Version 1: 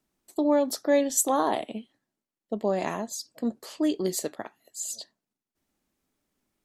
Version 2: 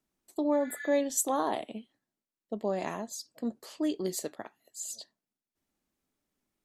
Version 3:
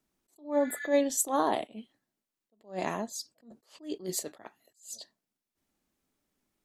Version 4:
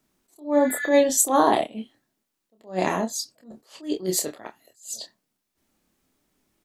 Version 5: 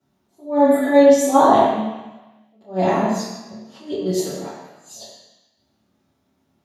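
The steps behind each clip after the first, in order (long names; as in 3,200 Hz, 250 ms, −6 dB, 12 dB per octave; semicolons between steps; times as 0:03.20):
healed spectral selection 0:00.59–0:00.87, 1,400–7,300 Hz both; level −5 dB
level that may rise only so fast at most 190 dB per second; level +3 dB
double-tracking delay 27 ms −6 dB; level +8 dB
convolution reverb RT60 1.1 s, pre-delay 3 ms, DRR −12 dB; level −14 dB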